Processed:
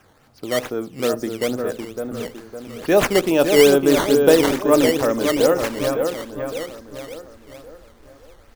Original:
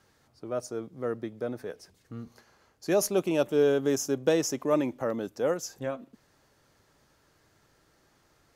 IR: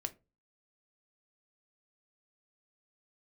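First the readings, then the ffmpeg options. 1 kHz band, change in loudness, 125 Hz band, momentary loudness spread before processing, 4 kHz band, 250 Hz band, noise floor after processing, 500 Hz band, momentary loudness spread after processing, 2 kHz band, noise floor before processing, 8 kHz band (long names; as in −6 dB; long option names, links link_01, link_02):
+12.5 dB, +10.5 dB, +8.5 dB, 19 LU, +15.5 dB, +11.0 dB, −53 dBFS, +11.0 dB, 21 LU, +14.5 dB, −67 dBFS, +7.5 dB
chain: -filter_complex "[0:a]asubboost=boost=8.5:cutoff=51,asplit=2[link_01][link_02];[link_02]adelay=558,lowpass=frequency=3800:poles=1,volume=-5.5dB,asplit=2[link_03][link_04];[link_04]adelay=558,lowpass=frequency=3800:poles=1,volume=0.46,asplit=2[link_05][link_06];[link_06]adelay=558,lowpass=frequency=3800:poles=1,volume=0.46,asplit=2[link_07][link_08];[link_08]adelay=558,lowpass=frequency=3800:poles=1,volume=0.46,asplit=2[link_09][link_10];[link_10]adelay=558,lowpass=frequency=3800:poles=1,volume=0.46,asplit=2[link_11][link_12];[link_12]adelay=558,lowpass=frequency=3800:poles=1,volume=0.46[link_13];[link_01][link_03][link_05][link_07][link_09][link_11][link_13]amix=inputs=7:normalize=0,asplit=2[link_14][link_15];[1:a]atrim=start_sample=2205,asetrate=34839,aresample=44100[link_16];[link_15][link_16]afir=irnorm=-1:irlink=0,volume=-1dB[link_17];[link_14][link_17]amix=inputs=2:normalize=0,acrusher=samples=10:mix=1:aa=0.000001:lfo=1:lforange=16:lforate=2.3,volume=5dB"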